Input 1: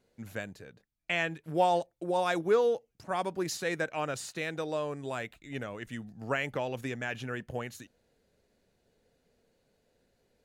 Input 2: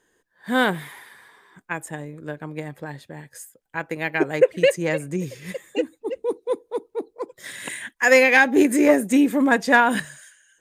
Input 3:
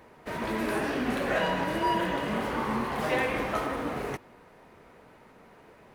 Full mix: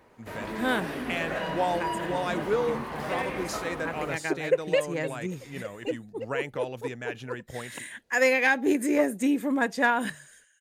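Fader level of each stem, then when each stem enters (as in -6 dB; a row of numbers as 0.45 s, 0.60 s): -1.5 dB, -7.5 dB, -4.5 dB; 0.00 s, 0.10 s, 0.00 s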